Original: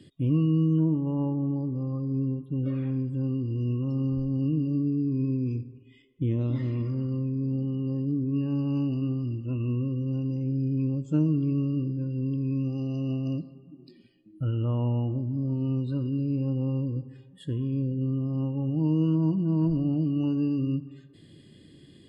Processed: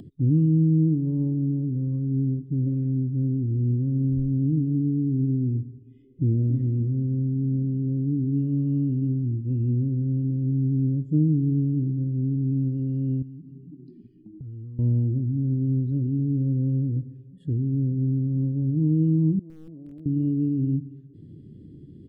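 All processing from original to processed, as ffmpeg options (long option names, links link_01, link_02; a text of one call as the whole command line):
ffmpeg -i in.wav -filter_complex "[0:a]asettb=1/sr,asplit=3[link_01][link_02][link_03];[link_01]atrim=end=13.224[link_04];[link_02]atrim=start=13.22:end=14.79,asetpts=PTS-STARTPTS,afade=type=in:duration=0.004:curve=qsin,afade=type=out:start_time=1.566:duration=0.004:curve=qsin,asuperstop=centerf=690:order=8:qfactor=1.3,acompressor=threshold=-40dB:ratio=16:attack=3.2:release=140:knee=1:detection=peak[link_05];[link_03]atrim=start=14.786[link_06];[link_04][link_05]acrossfade=duration=0.004:curve1=hsin:curve2=qsin[link_07];[link_07][link_06]acrossfade=duration=0.004:curve1=qsin:curve2=hsin,asettb=1/sr,asplit=3[link_08][link_09][link_10];[link_08]atrim=end=19.394[link_11];[link_09]atrim=start=19.39:end=20.06,asetpts=PTS-STARTPTS,afade=type=in:duration=0.004:curve=qsin,afade=type=out:start_time=0.666:duration=0.004:curve=qsin,bandpass=frequency=730:width_type=q:width=3.5,aeval=exprs='(mod(56.2*val(0)+1,2)-1)/56.2':channel_layout=same[link_12];[link_10]atrim=start=20.056[link_13];[link_11][link_12]acrossfade=duration=0.004:curve1=hsin:curve2=qsin[link_14];[link_14][link_13]acrossfade=duration=0.004:curve1=qsin:curve2=hsin,firequalizer=gain_entry='entry(110,0);entry(420,-7);entry(730,-29)':delay=0.05:min_phase=1,acompressor=mode=upward:threshold=-43dB:ratio=2.5,volume=5.5dB" out.wav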